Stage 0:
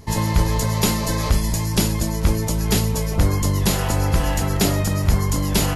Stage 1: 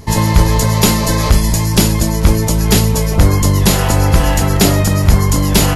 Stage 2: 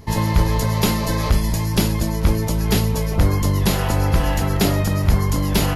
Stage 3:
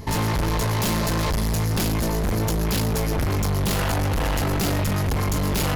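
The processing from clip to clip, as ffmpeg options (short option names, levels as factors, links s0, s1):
-af "asoftclip=type=hard:threshold=0.355,volume=2.51"
-af "equalizer=f=7800:w=1.2:g=-7,volume=0.473"
-af "volume=20,asoftclip=hard,volume=0.0501,volume=1.78"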